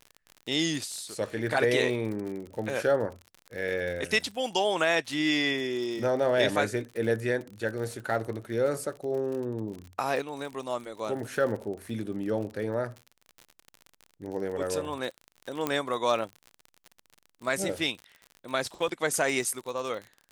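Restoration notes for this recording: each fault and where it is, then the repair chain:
crackle 50/s -35 dBFS
15.67 pop -13 dBFS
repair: de-click

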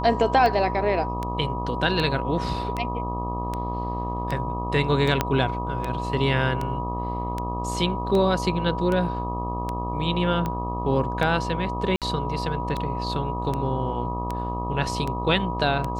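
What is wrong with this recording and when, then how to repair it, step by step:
buzz 60 Hz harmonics 21 -30 dBFS
tick 78 rpm -15 dBFS
tone 970 Hz -30 dBFS
5.21 pop -6 dBFS
11.96–12.02 gap 57 ms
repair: de-click; de-hum 60 Hz, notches 21; notch 970 Hz, Q 30; interpolate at 11.96, 57 ms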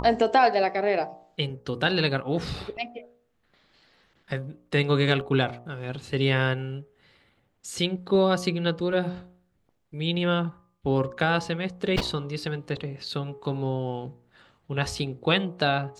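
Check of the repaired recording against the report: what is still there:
5.21 pop

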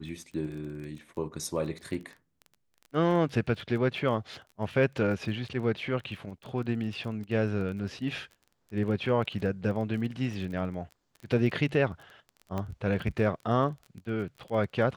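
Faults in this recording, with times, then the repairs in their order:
crackle 22/s -38 dBFS
12.58 pop -21 dBFS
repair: de-click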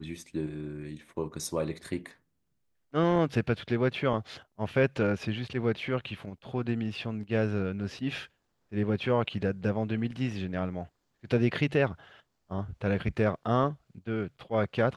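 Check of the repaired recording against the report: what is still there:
none

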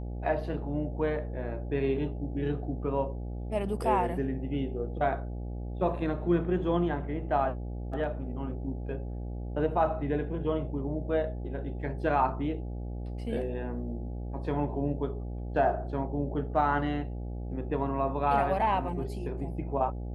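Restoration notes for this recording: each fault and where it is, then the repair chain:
buzz 60 Hz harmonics 14 -36 dBFS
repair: de-hum 60 Hz, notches 14

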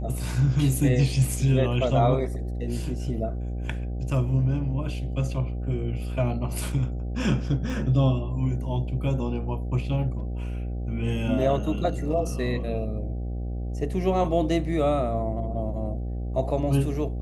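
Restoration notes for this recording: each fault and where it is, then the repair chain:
buzz 60 Hz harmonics 13 -30 dBFS
7.7 gap 2.3 ms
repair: de-hum 60 Hz, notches 13; interpolate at 7.7, 2.3 ms

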